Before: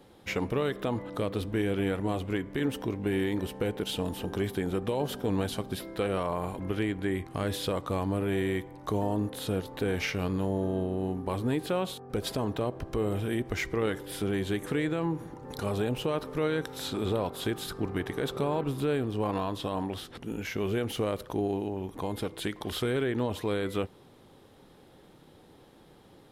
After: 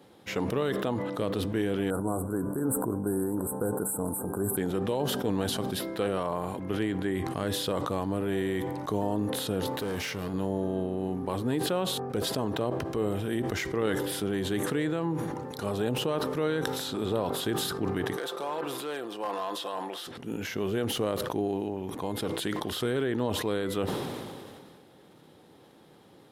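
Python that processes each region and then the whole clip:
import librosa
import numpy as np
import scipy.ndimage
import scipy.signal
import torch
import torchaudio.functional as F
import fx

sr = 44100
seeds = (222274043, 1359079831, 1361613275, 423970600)

y = fx.chain(x, sr, fx.cheby1_bandstop(low_hz=1500.0, high_hz=8000.0, order=5),
    fx.band_shelf(hz=6600.0, db=13.0, octaves=2.3), at=(1.9, 4.57))
y = fx.chain(y, sr, fx.highpass(hz=46.0, slope=12),
    fx.high_shelf(hz=9300.0, db=6.5),
    fx.clip_hard(threshold_db=-28.5), at=(9.71, 10.34))
y = fx.chain(y, sr, fx.highpass(hz=510.0, slope=12),
    fx.comb(ms=5.8, depth=0.41),
    fx.clip_hard(threshold_db=-26.0), at=(18.17, 20.07))
y = scipy.signal.sosfilt(scipy.signal.butter(2, 110.0, 'highpass', fs=sr, output='sos'), y)
y = fx.dynamic_eq(y, sr, hz=2300.0, q=5.4, threshold_db=-56.0, ratio=4.0, max_db=-6)
y = fx.sustainer(y, sr, db_per_s=27.0)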